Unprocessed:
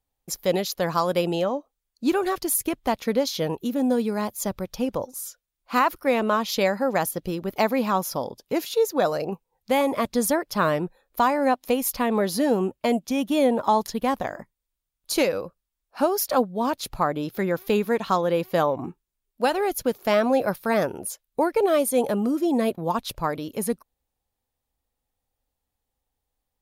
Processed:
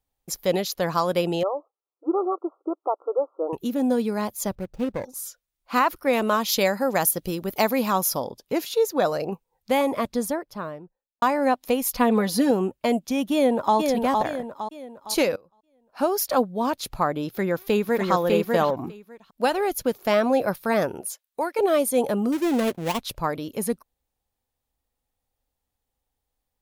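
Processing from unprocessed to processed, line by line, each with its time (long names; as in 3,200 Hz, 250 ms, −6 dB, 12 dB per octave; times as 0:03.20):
0:01.43–0:03.53: linear-phase brick-wall band-pass 300–1,400 Hz
0:04.55–0:05.05: running median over 41 samples
0:06.13–0:08.20: high-shelf EQ 5,800 Hz +10.5 dB
0:09.71–0:11.22: fade out and dull
0:11.95–0:12.51: comb filter 4.1 ms, depth 69%
0:13.33–0:13.76: delay throw 460 ms, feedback 40%, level −3.5 dB
0:15.36–0:16.10: fade in quadratic, from −23 dB
0:17.28–0:18.10: delay throw 600 ms, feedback 10%, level −2 dB
0:21.01–0:21.59: high-pass filter 760 Hz 6 dB per octave
0:22.32–0:23.02: gap after every zero crossing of 0.24 ms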